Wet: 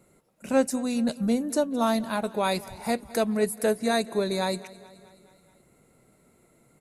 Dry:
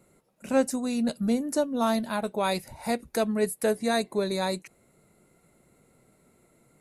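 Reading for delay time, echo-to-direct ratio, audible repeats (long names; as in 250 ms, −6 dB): 213 ms, −18.0 dB, 4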